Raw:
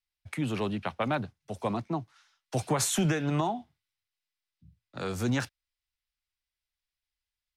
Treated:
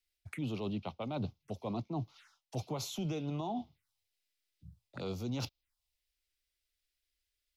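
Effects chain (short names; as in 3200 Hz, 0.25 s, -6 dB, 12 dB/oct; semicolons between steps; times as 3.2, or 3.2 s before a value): reverse; compressor 10:1, threshold -38 dBFS, peak gain reduction 16.5 dB; reverse; envelope phaser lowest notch 160 Hz, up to 1700 Hz, full sweep at -44 dBFS; gain +5 dB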